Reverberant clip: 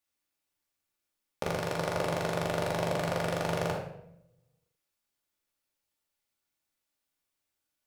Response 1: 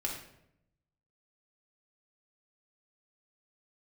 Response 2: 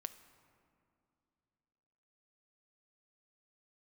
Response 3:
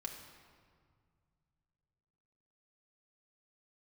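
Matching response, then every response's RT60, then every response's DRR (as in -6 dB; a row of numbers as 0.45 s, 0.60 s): 1; 0.75 s, 2.6 s, 2.0 s; -2.0 dB, 11.5 dB, 0.0 dB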